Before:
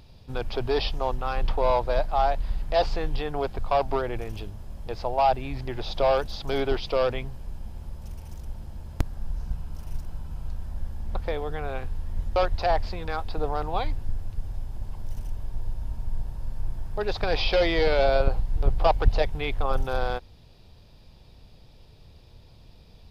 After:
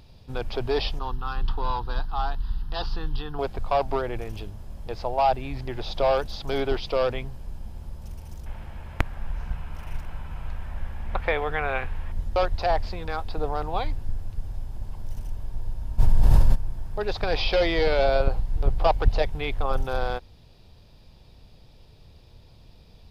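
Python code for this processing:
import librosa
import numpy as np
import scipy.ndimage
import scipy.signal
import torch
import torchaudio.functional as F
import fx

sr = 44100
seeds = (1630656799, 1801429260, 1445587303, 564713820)

y = fx.fixed_phaser(x, sr, hz=2200.0, stages=6, at=(0.99, 3.39))
y = fx.curve_eq(y, sr, hz=(290.0, 2300.0, 4700.0), db=(0, 14, -2), at=(8.46, 12.12))
y = fx.env_flatten(y, sr, amount_pct=100, at=(15.98, 16.54), fade=0.02)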